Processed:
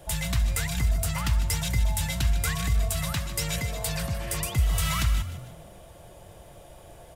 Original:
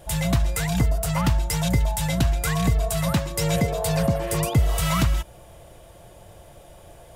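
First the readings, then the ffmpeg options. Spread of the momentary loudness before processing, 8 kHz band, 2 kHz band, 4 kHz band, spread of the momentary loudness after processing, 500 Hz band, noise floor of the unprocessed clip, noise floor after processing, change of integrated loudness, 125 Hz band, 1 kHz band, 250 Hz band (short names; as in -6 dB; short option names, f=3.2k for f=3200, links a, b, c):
2 LU, -1.0 dB, -2.0 dB, -1.5 dB, 5 LU, -11.5 dB, -48 dBFS, -49 dBFS, -4.0 dB, -5.0 dB, -7.5 dB, -10.5 dB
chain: -filter_complex "[0:a]acrossover=split=110|1200[a][b][c];[b]acompressor=threshold=-37dB:ratio=6[d];[a][d][c]amix=inputs=3:normalize=0,asplit=5[e][f][g][h][i];[f]adelay=151,afreqshift=36,volume=-12.5dB[j];[g]adelay=302,afreqshift=72,volume=-20.9dB[k];[h]adelay=453,afreqshift=108,volume=-29.3dB[l];[i]adelay=604,afreqshift=144,volume=-37.7dB[m];[e][j][k][l][m]amix=inputs=5:normalize=0,volume=-1.5dB"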